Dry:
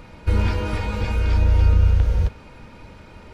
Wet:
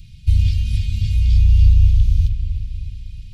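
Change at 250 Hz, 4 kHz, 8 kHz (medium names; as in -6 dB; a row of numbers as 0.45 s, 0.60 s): -7.0 dB, +1.5 dB, no reading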